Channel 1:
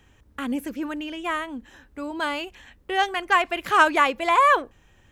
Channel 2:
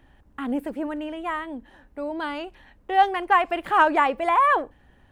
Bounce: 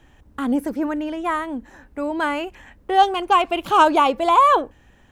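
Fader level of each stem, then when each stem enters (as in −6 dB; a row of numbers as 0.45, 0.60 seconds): −0.5, +1.5 decibels; 0.00, 0.00 seconds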